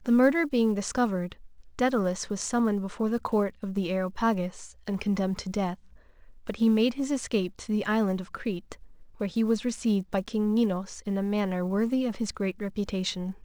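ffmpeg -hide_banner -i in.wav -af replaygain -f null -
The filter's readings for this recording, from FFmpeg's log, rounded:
track_gain = +7.6 dB
track_peak = 0.229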